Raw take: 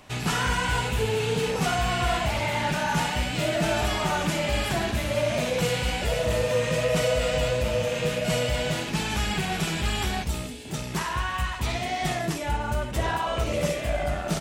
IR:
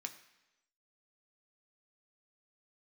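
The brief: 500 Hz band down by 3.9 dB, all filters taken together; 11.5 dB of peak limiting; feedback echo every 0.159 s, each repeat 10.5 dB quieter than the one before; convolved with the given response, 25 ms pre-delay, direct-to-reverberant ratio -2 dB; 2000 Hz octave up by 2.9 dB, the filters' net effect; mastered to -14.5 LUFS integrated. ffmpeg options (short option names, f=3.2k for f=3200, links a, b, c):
-filter_complex "[0:a]equalizer=f=500:t=o:g=-5,equalizer=f=2k:t=o:g=4,alimiter=limit=-24dB:level=0:latency=1,aecho=1:1:159|318|477:0.299|0.0896|0.0269,asplit=2[a][b];[1:a]atrim=start_sample=2205,adelay=25[c];[b][c]afir=irnorm=-1:irlink=0,volume=4dB[d];[a][d]amix=inputs=2:normalize=0,volume=13.5dB"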